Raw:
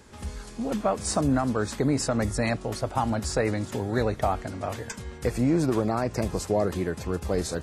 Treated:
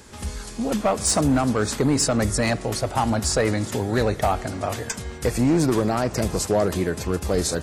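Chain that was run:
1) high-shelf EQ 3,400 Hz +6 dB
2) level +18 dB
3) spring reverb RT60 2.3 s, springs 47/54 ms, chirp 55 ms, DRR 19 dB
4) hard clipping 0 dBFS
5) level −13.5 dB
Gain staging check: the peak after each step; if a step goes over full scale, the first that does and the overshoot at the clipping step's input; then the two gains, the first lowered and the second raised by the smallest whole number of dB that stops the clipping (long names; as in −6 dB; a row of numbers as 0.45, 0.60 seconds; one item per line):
−10.5, +7.5, +7.5, 0.0, −13.5 dBFS
step 2, 7.5 dB
step 2 +10 dB, step 5 −5.5 dB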